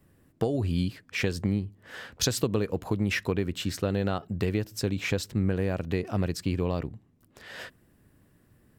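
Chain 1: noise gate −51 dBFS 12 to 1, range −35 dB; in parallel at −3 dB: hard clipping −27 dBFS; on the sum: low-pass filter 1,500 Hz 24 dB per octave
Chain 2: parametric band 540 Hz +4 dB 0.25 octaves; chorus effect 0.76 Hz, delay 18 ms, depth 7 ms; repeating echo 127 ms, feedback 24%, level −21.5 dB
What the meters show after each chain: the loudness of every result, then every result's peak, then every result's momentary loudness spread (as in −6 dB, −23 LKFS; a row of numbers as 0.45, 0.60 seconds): −27.0, −32.0 LKFS; −11.5, −15.0 dBFS; 16, 13 LU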